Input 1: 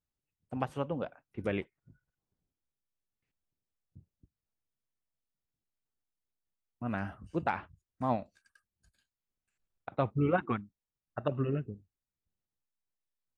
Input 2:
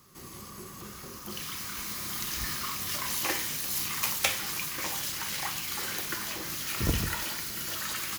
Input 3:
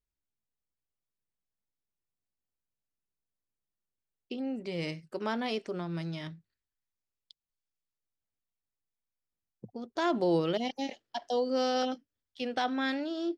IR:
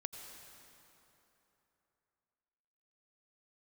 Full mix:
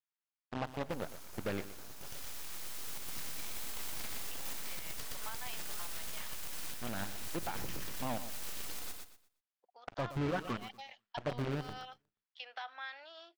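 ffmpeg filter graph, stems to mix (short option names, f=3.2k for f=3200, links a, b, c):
-filter_complex "[0:a]asoftclip=type=hard:threshold=-25dB,acrusher=bits=6:dc=4:mix=0:aa=0.000001,volume=-0.5dB,asplit=2[a][b];[b]volume=-18dB[c];[1:a]aeval=exprs='abs(val(0))':c=same,adelay=750,volume=-6.5dB,asplit=2[d][e];[e]volume=-5dB[f];[2:a]acompressor=threshold=-35dB:ratio=6,highpass=f=820:w=0.5412,highpass=f=820:w=1.3066,volume=-1dB[g];[a][g]amix=inputs=2:normalize=0,lowpass=3.6k,alimiter=level_in=3.5dB:limit=-24dB:level=0:latency=1:release=82,volume=-3.5dB,volume=0dB[h];[c][f]amix=inputs=2:normalize=0,aecho=0:1:120|240|360|480:1|0.25|0.0625|0.0156[i];[d][h][i]amix=inputs=3:normalize=0,alimiter=level_in=3.5dB:limit=-24dB:level=0:latency=1:release=195,volume=-3.5dB"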